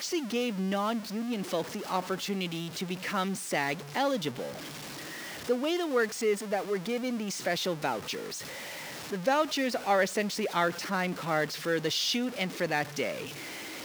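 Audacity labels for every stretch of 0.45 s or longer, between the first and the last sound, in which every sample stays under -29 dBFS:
4.460000	5.490000	silence
8.170000	9.120000	silence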